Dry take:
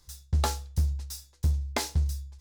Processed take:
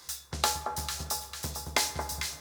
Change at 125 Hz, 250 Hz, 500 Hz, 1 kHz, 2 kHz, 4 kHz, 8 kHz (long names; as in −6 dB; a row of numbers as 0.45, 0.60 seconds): −13.0, −4.0, +1.0, +4.0, +6.0, +6.5, +6.5 decibels